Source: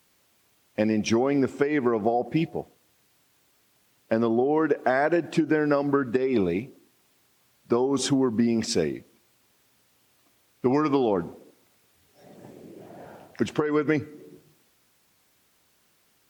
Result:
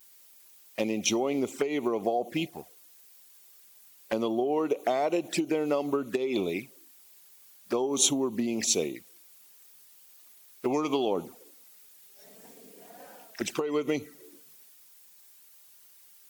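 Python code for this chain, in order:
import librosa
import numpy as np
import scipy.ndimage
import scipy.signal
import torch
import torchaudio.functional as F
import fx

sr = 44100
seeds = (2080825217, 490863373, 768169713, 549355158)

y = fx.vibrato(x, sr, rate_hz=0.41, depth_cents=19.0)
y = fx.riaa(y, sr, side='recording')
y = fx.env_flanger(y, sr, rest_ms=6.1, full_db=-25.0)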